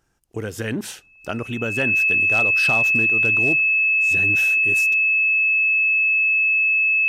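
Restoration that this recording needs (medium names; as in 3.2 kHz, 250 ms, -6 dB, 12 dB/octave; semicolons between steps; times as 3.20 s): clip repair -12 dBFS; band-stop 2.6 kHz, Q 30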